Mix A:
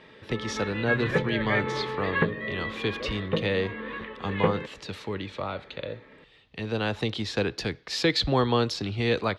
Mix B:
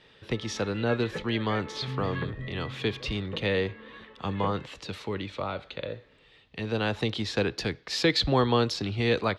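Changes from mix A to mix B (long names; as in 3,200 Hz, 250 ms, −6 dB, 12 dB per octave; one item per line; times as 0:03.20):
first sound −11.5 dB
second sound: entry +0.95 s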